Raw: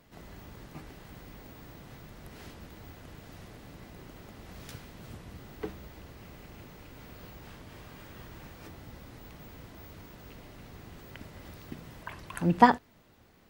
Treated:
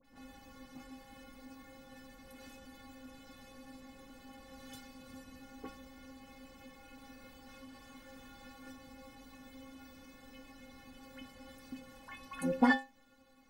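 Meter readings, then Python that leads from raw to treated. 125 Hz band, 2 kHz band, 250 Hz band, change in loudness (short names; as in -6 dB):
-15.5 dB, -2.0 dB, -3.5 dB, -10.5 dB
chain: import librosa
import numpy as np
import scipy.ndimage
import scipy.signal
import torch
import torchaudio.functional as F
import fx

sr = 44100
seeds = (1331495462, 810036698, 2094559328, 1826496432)

y = fx.stiff_resonator(x, sr, f0_hz=260.0, decay_s=0.29, stiffness=0.008)
y = fx.dispersion(y, sr, late='highs', ms=46.0, hz=2000.0)
y = y * 10.0 ** (10.0 / 20.0)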